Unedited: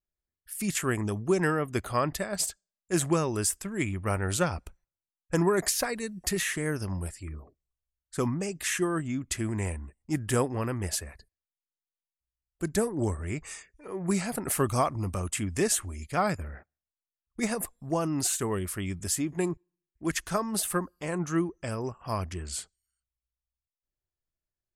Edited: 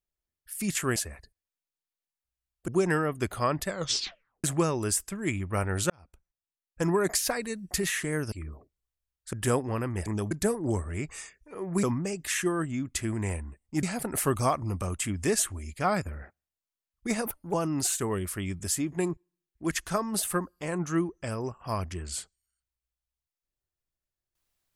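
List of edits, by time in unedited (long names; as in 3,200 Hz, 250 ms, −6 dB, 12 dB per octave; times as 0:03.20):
0:00.96–0:01.21: swap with 0:10.92–0:12.64
0:02.21: tape stop 0.76 s
0:04.43–0:05.61: fade in
0:06.85–0:07.18: remove
0:08.19–0:10.19: move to 0:14.16
0:17.59–0:17.94: play speed 126%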